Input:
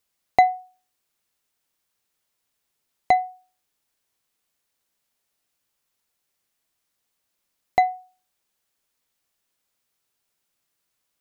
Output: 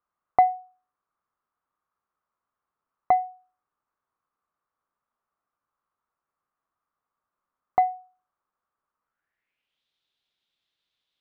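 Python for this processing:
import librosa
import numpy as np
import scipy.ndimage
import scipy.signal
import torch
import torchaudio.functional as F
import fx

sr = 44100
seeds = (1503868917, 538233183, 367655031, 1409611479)

y = fx.filter_sweep_lowpass(x, sr, from_hz=1200.0, to_hz=3600.0, start_s=9.03, end_s=9.83, q=5.0)
y = y * librosa.db_to_amplitude(-6.0)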